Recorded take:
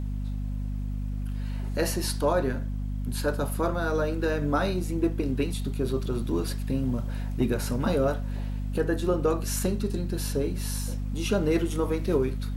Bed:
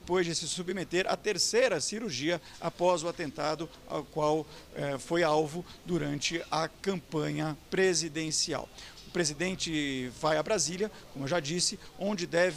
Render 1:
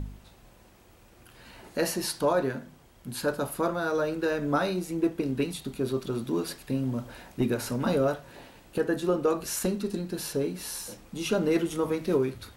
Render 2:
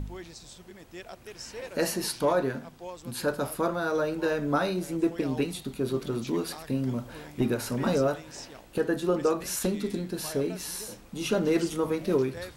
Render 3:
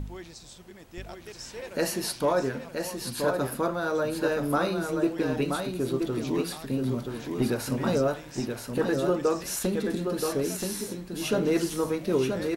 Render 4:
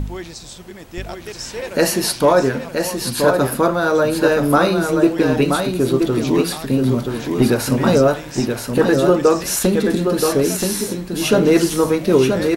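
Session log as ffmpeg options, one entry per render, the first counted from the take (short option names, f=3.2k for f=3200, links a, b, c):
-af "bandreject=f=50:t=h:w=4,bandreject=f=100:t=h:w=4,bandreject=f=150:t=h:w=4,bandreject=f=200:t=h:w=4,bandreject=f=250:t=h:w=4"
-filter_complex "[1:a]volume=-14.5dB[a];[0:a][a]amix=inputs=2:normalize=0"
-af "aecho=1:1:977:0.562"
-af "volume=11.5dB"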